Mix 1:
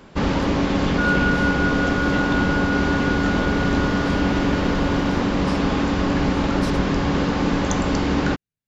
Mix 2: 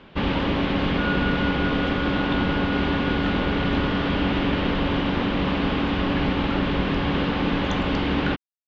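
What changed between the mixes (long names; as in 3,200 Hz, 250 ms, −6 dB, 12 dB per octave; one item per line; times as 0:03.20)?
speech: muted
first sound +6.0 dB
master: add transistor ladder low-pass 3,800 Hz, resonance 45%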